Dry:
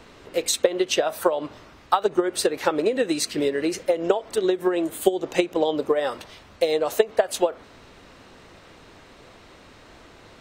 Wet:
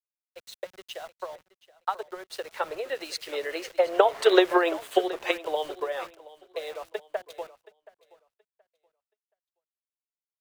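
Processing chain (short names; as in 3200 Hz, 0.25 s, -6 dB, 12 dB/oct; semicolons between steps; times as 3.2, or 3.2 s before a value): Doppler pass-by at 4.36, 9 m/s, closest 1.8 m; expander -50 dBFS; HPF 350 Hz 24 dB/oct; three-band isolator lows -14 dB, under 520 Hz, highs -16 dB, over 4200 Hz; in parallel at +2 dB: vocal rider within 4 dB 0.5 s; on the sum: sample gate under -46.5 dBFS; on a send: feedback echo 0.725 s, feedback 33%, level -15 dB; on the sum: three-band expander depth 40%; gain +4 dB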